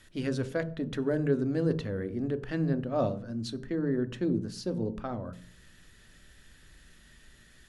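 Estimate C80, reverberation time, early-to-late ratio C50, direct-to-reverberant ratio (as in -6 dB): 21.0 dB, 0.40 s, 17.0 dB, 10.0 dB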